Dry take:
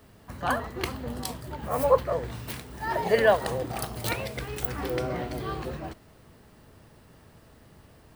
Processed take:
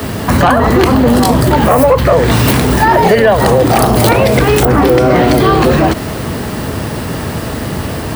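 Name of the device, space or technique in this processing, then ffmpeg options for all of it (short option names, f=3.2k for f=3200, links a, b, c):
mastering chain: -filter_complex "[0:a]highpass=56,equalizer=f=260:t=o:w=0.77:g=2.5,acrossover=split=200|1300[a][b][c];[a]acompressor=threshold=-40dB:ratio=4[d];[b]acompressor=threshold=-31dB:ratio=4[e];[c]acompressor=threshold=-43dB:ratio=4[f];[d][e][f]amix=inputs=3:normalize=0,acompressor=threshold=-35dB:ratio=3,asoftclip=type=tanh:threshold=-28dB,asoftclip=type=hard:threshold=-31.5dB,alimiter=level_in=36dB:limit=-1dB:release=50:level=0:latency=1,volume=-1dB"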